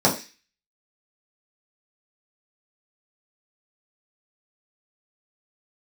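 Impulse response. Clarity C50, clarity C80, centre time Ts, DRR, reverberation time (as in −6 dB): 11.0 dB, 15.0 dB, 20 ms, −5.5 dB, 0.30 s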